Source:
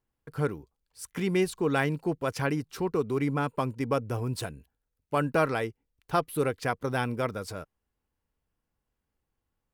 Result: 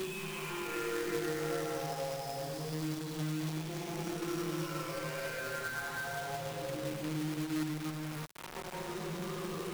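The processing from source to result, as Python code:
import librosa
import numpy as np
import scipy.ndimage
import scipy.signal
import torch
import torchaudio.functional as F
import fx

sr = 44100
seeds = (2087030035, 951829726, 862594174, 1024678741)

y = fx.spec_delay(x, sr, highs='early', ms=945)
y = scipy.signal.sosfilt(scipy.signal.butter(2, 5800.0, 'lowpass', fs=sr, output='sos'), y)
y = fx.high_shelf(y, sr, hz=4300.0, db=10.5)
y = fx.chorus_voices(y, sr, voices=4, hz=0.42, base_ms=22, depth_ms=4.2, mix_pct=50)
y = fx.paulstretch(y, sr, seeds[0], factor=6.7, window_s=0.25, from_s=1.43)
y = fx.resonator_bank(y, sr, root=39, chord='sus4', decay_s=0.51)
y = fx.quant_companded(y, sr, bits=4)
y = fx.band_squash(y, sr, depth_pct=70)
y = y * librosa.db_to_amplitude(8.0)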